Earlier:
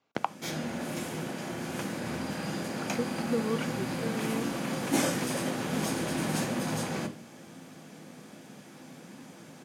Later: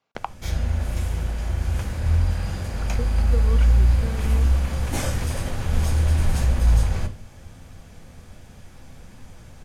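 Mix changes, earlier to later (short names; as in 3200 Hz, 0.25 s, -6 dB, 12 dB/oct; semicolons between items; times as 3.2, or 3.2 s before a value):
background: remove steep high-pass 150 Hz 36 dB/oct; master: add bell 300 Hz -7.5 dB 0.63 oct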